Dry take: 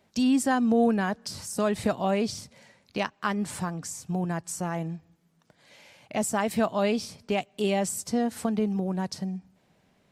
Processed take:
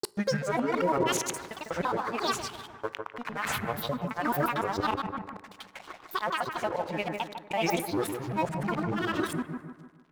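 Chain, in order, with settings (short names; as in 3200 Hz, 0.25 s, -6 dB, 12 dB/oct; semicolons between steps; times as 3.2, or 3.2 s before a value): local time reversal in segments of 0.19 s; band shelf 1300 Hz +13 dB 2.6 oct; reverse; compressor 4:1, threshold -30 dBFS, peak gain reduction 17.5 dB; reverse; limiter -23.5 dBFS, peak gain reduction 10 dB; grains, pitch spread up and down by 12 st; crossover distortion -52 dBFS; analogue delay 0.151 s, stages 2048, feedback 45%, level -6 dB; on a send at -19 dB: reverb RT60 2.2 s, pre-delay 8 ms; on the sum: noise-modulated level, depth 55%; gain +8.5 dB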